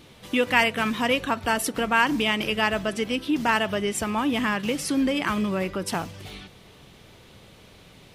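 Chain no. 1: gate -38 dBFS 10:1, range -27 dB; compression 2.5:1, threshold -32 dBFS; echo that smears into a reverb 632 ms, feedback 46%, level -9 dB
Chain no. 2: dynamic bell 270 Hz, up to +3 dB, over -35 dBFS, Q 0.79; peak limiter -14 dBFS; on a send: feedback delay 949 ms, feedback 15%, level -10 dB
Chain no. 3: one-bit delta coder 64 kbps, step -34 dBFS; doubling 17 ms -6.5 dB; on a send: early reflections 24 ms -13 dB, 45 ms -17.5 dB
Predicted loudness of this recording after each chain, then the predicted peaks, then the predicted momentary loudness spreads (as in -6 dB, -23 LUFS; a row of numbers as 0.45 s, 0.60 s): -32.0 LUFS, -24.5 LUFS, -24.0 LUFS; -16.0 dBFS, -12.0 dBFS, -8.0 dBFS; 13 LU, 11 LU, 16 LU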